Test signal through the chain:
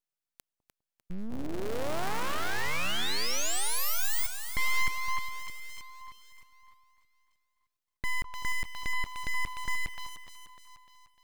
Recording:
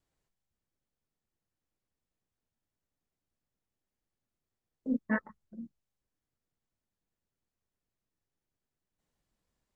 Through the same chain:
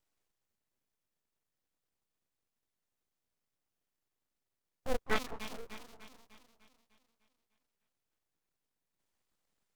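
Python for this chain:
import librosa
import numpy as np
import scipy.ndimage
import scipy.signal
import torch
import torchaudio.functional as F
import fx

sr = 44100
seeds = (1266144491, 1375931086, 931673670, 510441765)

y = fx.cycle_switch(x, sr, every=2, mode='inverted')
y = fx.low_shelf(y, sr, hz=340.0, db=-6.0)
y = fx.echo_split(y, sr, split_hz=610.0, low_ms=203, high_ms=300, feedback_pct=52, wet_db=-10)
y = np.abs(y)
y = y * librosa.db_to_amplitude(3.0)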